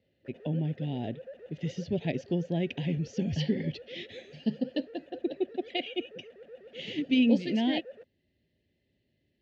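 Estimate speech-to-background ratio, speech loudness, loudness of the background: 17.5 dB, -31.5 LUFS, -49.0 LUFS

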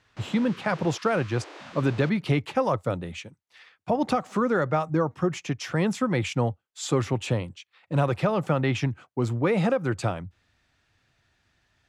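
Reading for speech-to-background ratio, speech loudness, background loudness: 18.0 dB, -26.5 LUFS, -44.5 LUFS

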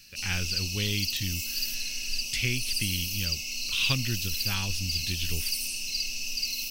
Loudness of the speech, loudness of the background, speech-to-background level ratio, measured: -31.5 LUFS, -30.0 LUFS, -1.5 dB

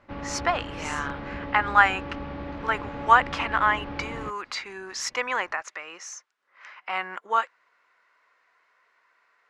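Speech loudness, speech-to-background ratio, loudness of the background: -26.0 LUFS, 10.5 dB, -36.5 LUFS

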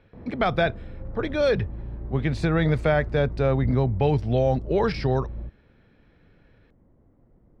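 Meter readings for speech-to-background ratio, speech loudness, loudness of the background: 12.0 dB, -24.5 LUFS, -36.5 LUFS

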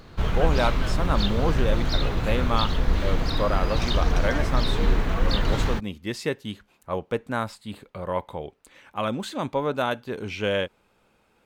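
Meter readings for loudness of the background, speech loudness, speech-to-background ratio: -26.5 LUFS, -29.5 LUFS, -3.0 dB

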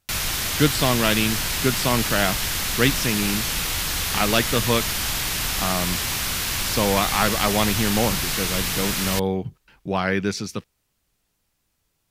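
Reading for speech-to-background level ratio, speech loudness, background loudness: -1.0 dB, -24.0 LUFS, -23.0 LUFS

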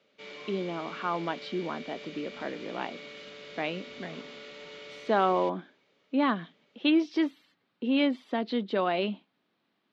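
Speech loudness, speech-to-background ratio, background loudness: -30.5 LUFS, 13.5 dB, -44.0 LUFS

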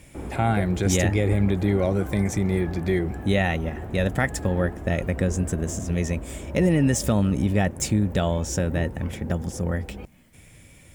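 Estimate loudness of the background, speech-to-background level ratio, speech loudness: -36.0 LUFS, 11.5 dB, -24.5 LUFS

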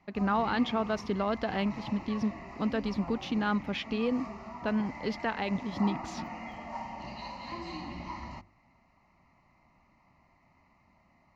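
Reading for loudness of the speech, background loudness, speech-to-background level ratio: -32.0 LUFS, -42.0 LUFS, 10.0 dB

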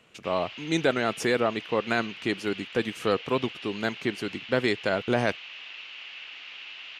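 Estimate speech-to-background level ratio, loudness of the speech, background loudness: 12.0 dB, -28.0 LUFS, -40.0 LUFS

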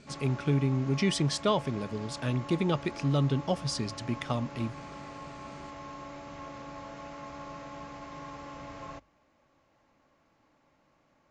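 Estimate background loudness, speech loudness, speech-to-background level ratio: -44.0 LUFS, -30.5 LUFS, 13.5 dB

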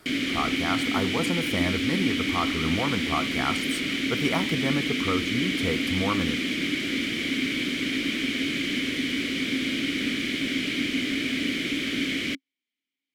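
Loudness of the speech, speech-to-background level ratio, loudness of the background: -30.0 LUFS, -3.5 dB, -26.5 LUFS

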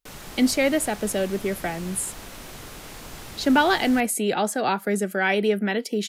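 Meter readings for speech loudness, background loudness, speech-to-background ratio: -23.5 LUFS, -39.5 LUFS, 16.0 dB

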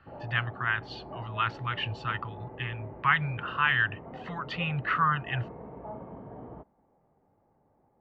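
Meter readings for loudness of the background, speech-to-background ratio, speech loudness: -44.5 LUFS, 15.0 dB, -29.5 LUFS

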